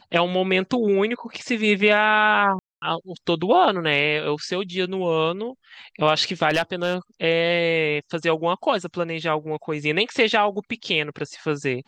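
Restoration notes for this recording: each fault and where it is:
2.59–2.82 s: dropout 231 ms
6.49–6.94 s: clipped -14 dBFS

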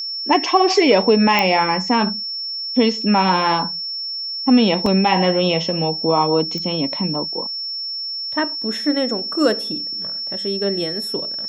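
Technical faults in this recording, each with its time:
whine 5.4 kHz -24 dBFS
1.39 s: pop -3 dBFS
4.86 s: dropout 2.7 ms
6.58 s: pop -15 dBFS

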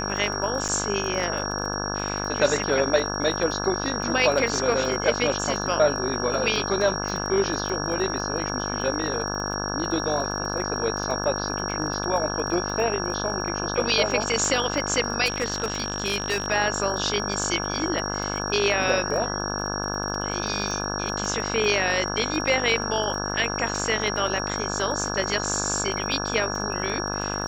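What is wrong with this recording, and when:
buzz 50 Hz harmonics 34 -30 dBFS
crackle 26 per s -31 dBFS
whine 5.6 kHz -31 dBFS
0.68–0.69 s: dropout 8 ms
15.25–16.48 s: clipped -19.5 dBFS

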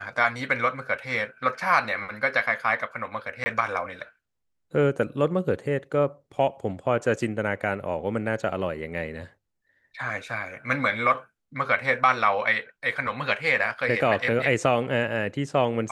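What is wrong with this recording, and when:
3.44–3.46 s: dropout 20 ms

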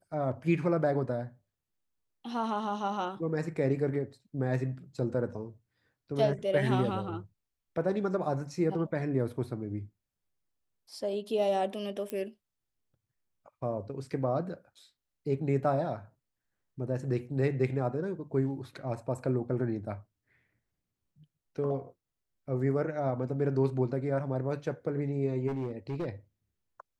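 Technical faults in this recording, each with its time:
12.10 s: pop -21 dBFS
25.47–26.07 s: clipped -30 dBFS

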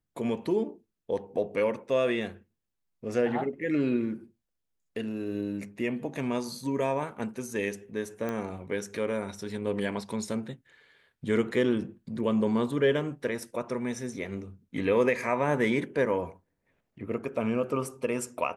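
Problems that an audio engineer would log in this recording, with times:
8.29 s: pop -21 dBFS

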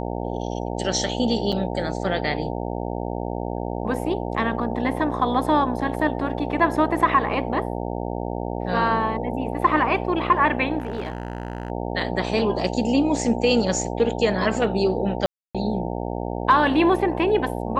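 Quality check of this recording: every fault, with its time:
buzz 60 Hz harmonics 15 -28 dBFS
1.52–1.53 s: dropout 5.7 ms
10.78–11.70 s: clipped -23.5 dBFS
15.26–15.55 s: dropout 286 ms

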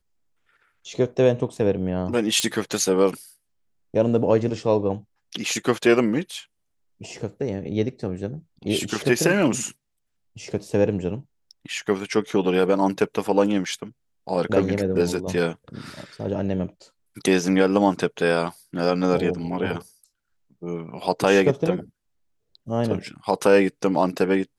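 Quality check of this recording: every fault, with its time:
2.40 s: pop -7 dBFS

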